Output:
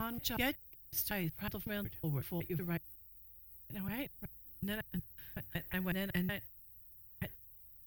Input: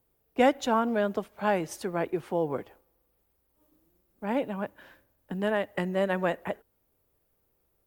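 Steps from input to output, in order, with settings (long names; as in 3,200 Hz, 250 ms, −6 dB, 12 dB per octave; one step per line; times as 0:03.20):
slices reordered back to front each 185 ms, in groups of 5
drawn EQ curve 100 Hz 0 dB, 150 Hz −5 dB, 230 Hz −24 dB, 330 Hz −19 dB, 470 Hz −30 dB, 1,100 Hz −27 dB, 1,900 Hz −15 dB, 5,200 Hz −9 dB, 7,700 Hz −18 dB, 14,000 Hz +9 dB
level +10 dB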